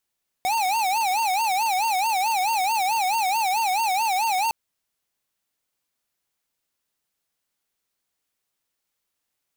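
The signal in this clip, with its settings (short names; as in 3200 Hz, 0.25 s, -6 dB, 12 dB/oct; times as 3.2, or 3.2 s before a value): siren wail 733–920 Hz 4.6/s square -22.5 dBFS 4.06 s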